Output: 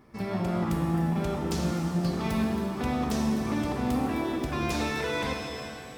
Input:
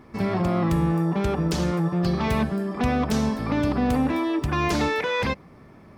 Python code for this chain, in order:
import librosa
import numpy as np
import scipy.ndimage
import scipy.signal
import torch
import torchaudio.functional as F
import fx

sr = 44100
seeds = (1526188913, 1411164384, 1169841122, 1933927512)

y = fx.high_shelf(x, sr, hz=5600.0, db=7.0)
y = fx.rev_shimmer(y, sr, seeds[0], rt60_s=2.8, semitones=7, shimmer_db=-8, drr_db=2.0)
y = y * librosa.db_to_amplitude(-8.5)